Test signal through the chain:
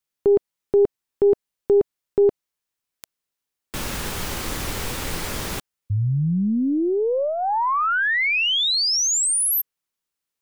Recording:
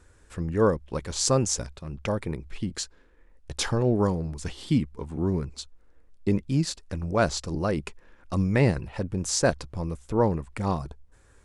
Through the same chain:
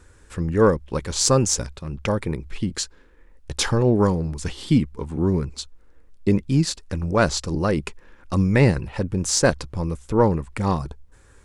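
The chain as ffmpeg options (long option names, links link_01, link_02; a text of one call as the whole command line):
ffmpeg -i in.wav -af "aeval=exprs='0.501*(cos(1*acos(clip(val(0)/0.501,-1,1)))-cos(1*PI/2))+0.02*(cos(6*acos(clip(val(0)/0.501,-1,1)))-cos(6*PI/2))+0.00708*(cos(8*acos(clip(val(0)/0.501,-1,1)))-cos(8*PI/2))':channel_layout=same,equalizer=frequency=670:width_type=o:width=0.26:gain=-5,volume=5.5dB" out.wav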